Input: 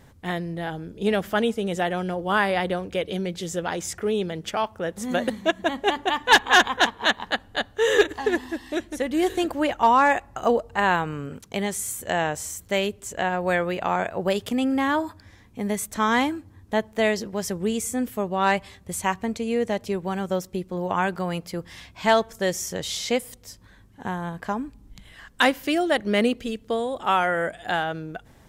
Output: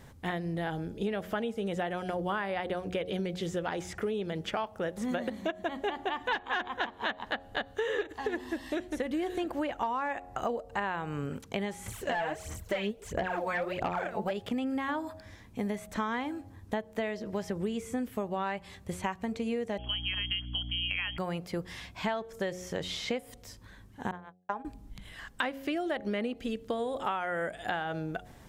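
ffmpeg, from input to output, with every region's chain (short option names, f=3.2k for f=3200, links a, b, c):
-filter_complex "[0:a]asettb=1/sr,asplit=3[a][b][c];[a]atrim=end=11.864[d];[b]atrim=start=11.86:end=14.31,asetpts=PTS-STARTPTS,afade=t=in:d=0.004:c=qsin,afade=t=out:st=2.446:d=0.004:c=qsin,aphaser=in_gain=1:out_gain=1:delay=4.7:decay=0.75:speed=1.5:type=sinusoidal,asoftclip=type=hard:threshold=-14dB[e];[c]atrim=start=14.306[f];[d][e]acrossfade=d=0.004:c1=hsin:c2=qsin[g];[g][f]acrossfade=d=0.004:c1=qsin:c2=hsin,asettb=1/sr,asplit=3[h][i][j];[h]atrim=end=19.784[k];[i]atrim=start=19.78:end=21.18,asetpts=PTS-STARTPTS,afade=t=in:d=0.004:c=qsin,afade=t=out:st=1.396:d=0.004:c=qsin,lowpass=f=2.9k:t=q:w=0.5098,lowpass=f=2.9k:t=q:w=0.6013,lowpass=f=2.9k:t=q:w=0.9,lowpass=f=2.9k:t=q:w=2.563,afreqshift=-3400,aeval=exprs='val(0)+0.0158*(sin(2*PI*60*n/s)+sin(2*PI*2*60*n/s)/2+sin(2*PI*3*60*n/s)/3+sin(2*PI*4*60*n/s)/4+sin(2*PI*5*60*n/s)/5)':c=same[l];[j]atrim=start=21.176[m];[k][l]acrossfade=d=0.004:c1=hsin:c2=qsin[n];[n][m]acrossfade=d=0.004:c1=qsin:c2=hsin,asettb=1/sr,asplit=3[o][p][q];[o]atrim=end=24.114[r];[p]atrim=start=24.11:end=24.65,asetpts=PTS-STARTPTS,afade=t=in:d=0.004:c=qsin,afade=t=out:st=0.536:d=0.004:c=qsin,agate=range=-60dB:threshold=-28dB:ratio=16:release=100:detection=peak,acrossover=split=420 3600:gain=0.251 1 0.141[s][t][u];[s][t][u]amix=inputs=3:normalize=0[v];[q]atrim=start=24.646[w];[r][v]acrossfade=d=0.004:c1=hsin:c2=qsin[x];[x][w]acrossfade=d=0.004:c1=qsin:c2=hsin,acrossover=split=3500[y][z];[z]acompressor=threshold=-48dB:ratio=4:attack=1:release=60[aa];[y][aa]amix=inputs=2:normalize=0,bandreject=f=90.64:t=h:w=4,bandreject=f=181.28:t=h:w=4,bandreject=f=271.92:t=h:w=4,bandreject=f=362.56:t=h:w=4,bandreject=f=453.2:t=h:w=4,bandreject=f=543.84:t=h:w=4,bandreject=f=634.48:t=h:w=4,bandreject=f=725.12:t=h:w=4,bandreject=f=815.76:t=h:w=4,acompressor=threshold=-29dB:ratio=10"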